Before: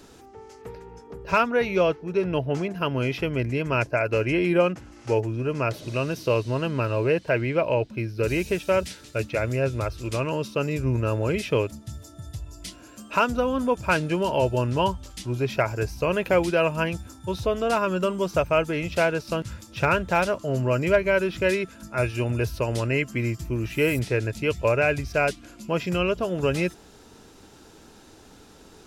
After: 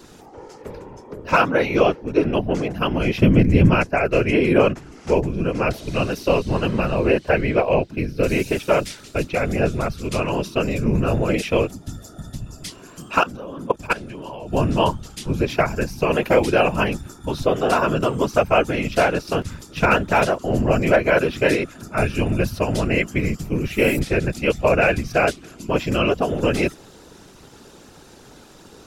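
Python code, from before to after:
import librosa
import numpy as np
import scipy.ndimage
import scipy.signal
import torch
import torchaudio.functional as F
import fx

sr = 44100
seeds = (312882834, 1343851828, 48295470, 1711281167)

y = fx.peak_eq(x, sr, hz=170.0, db=14.5, octaves=0.99, at=(3.18, 3.75))
y = fx.level_steps(y, sr, step_db=19, at=(13.21, 14.53))
y = fx.whisperise(y, sr, seeds[0])
y = F.gain(torch.from_numpy(y), 4.5).numpy()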